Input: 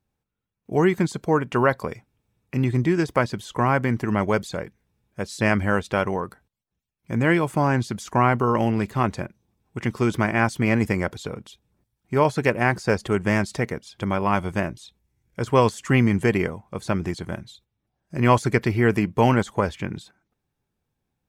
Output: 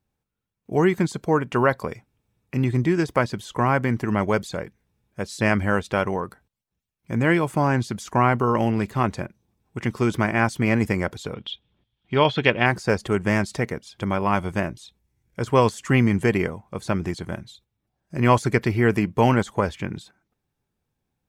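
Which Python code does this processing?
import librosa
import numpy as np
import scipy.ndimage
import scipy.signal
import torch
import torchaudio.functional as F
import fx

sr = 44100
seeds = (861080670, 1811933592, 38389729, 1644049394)

y = fx.lowpass_res(x, sr, hz=3300.0, q=7.7, at=(11.34, 12.66))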